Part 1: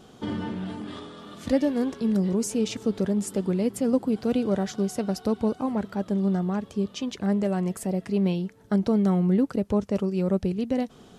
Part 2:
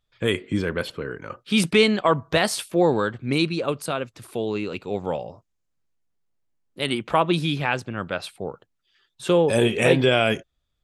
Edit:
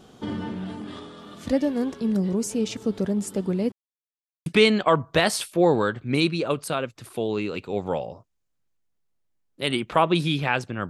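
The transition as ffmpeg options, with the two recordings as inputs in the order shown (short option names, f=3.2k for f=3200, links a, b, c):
-filter_complex "[0:a]apad=whole_dur=10.89,atrim=end=10.89,asplit=2[a][b];[a]atrim=end=3.72,asetpts=PTS-STARTPTS,afade=t=out:st=3.716:d=0.004:c=hsin[c];[b]atrim=start=3.72:end=4.46,asetpts=PTS-STARTPTS,volume=0[d];[1:a]atrim=start=1.64:end=8.07,asetpts=PTS-STARTPTS,afade=t=in:d=0.004:c=hsin[e];[c][d][e]concat=n=3:v=0:a=1"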